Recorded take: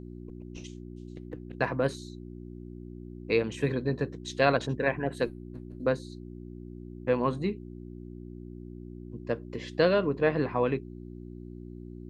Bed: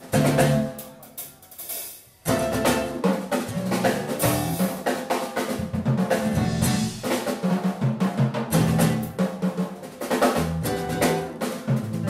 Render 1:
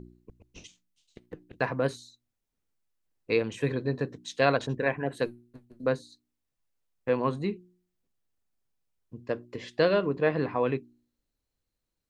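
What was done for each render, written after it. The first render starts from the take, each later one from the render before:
hum removal 60 Hz, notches 6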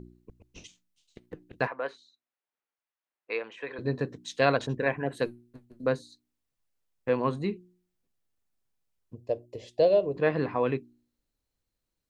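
0:01.67–0:03.79: band-pass filter 670–2,600 Hz
0:09.15–0:10.16: drawn EQ curve 100 Hz 0 dB, 230 Hz −11 dB, 650 Hz +6 dB, 1,400 Hz −23 dB, 2,600 Hz −8 dB, 9,700 Hz 0 dB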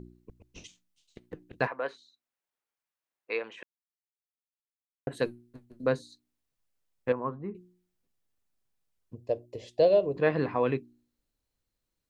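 0:03.63–0:05.07: silence
0:07.12–0:07.55: transistor ladder low-pass 1,600 Hz, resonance 35%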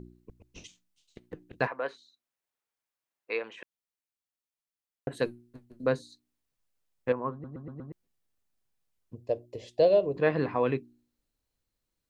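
0:07.32: stutter in place 0.12 s, 5 plays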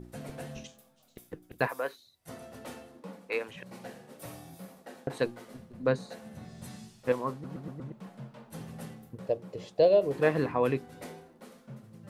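mix in bed −23 dB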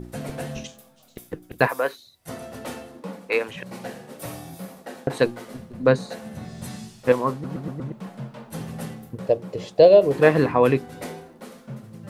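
level +9.5 dB

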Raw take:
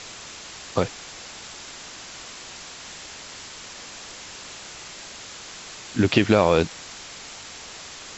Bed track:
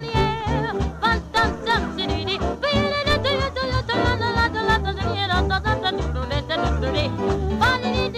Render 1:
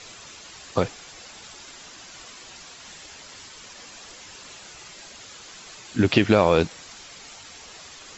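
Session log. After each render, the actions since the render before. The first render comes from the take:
broadband denoise 8 dB, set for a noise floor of −41 dBFS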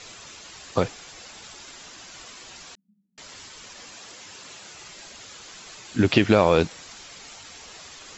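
0:02.75–0:03.18: flat-topped band-pass 200 Hz, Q 7
0:03.95–0:04.80: high-pass filter 84 Hz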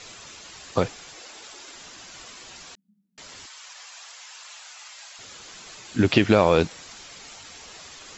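0:01.14–0:01.75: low shelf with overshoot 230 Hz −10 dB, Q 1.5
0:03.46–0:05.19: high-pass filter 740 Hz 24 dB per octave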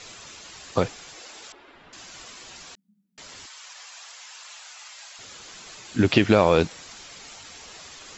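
0:01.52–0:01.93: high-frequency loss of the air 490 metres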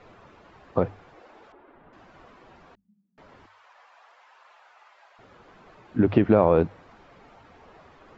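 low-pass filter 1,100 Hz 12 dB per octave
mains-hum notches 50/100 Hz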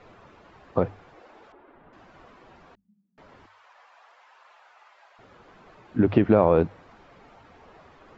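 no processing that can be heard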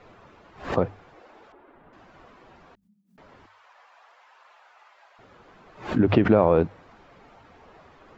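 background raised ahead of every attack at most 140 dB per second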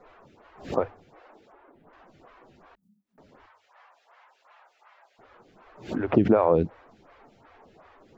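phaser with staggered stages 2.7 Hz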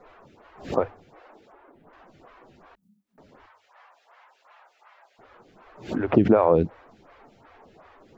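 level +2 dB

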